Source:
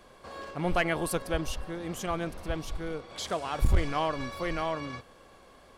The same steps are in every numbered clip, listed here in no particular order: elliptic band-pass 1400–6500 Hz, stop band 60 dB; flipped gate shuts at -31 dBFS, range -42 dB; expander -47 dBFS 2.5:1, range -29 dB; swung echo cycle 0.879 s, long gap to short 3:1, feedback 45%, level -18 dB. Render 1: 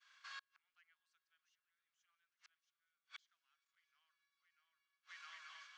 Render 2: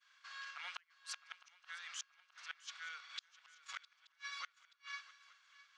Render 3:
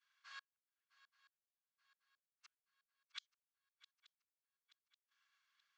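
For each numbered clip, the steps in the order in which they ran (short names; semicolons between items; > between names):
swung echo > expander > flipped gate > elliptic band-pass; expander > elliptic band-pass > flipped gate > swung echo; flipped gate > elliptic band-pass > expander > swung echo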